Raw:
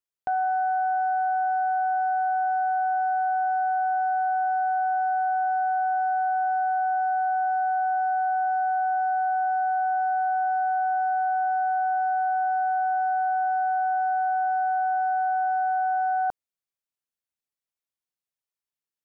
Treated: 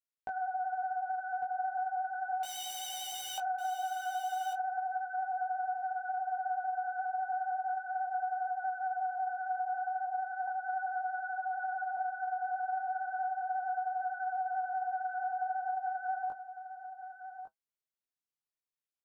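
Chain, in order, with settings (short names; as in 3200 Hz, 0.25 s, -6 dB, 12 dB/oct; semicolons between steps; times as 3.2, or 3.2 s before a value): 2.43–3.38 wrapped overs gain 28 dB; flange 0.11 Hz, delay 4.2 ms, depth 6.6 ms, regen -60%; vibrato 11 Hz 34 cents; 10.47–11.97 comb 3.5 ms, depth 75%; chorus 0.36 Hz, delay 17.5 ms, depth 7 ms; compressor, threshold -32 dBFS, peak gain reduction 5.5 dB; echo 1.153 s -10.5 dB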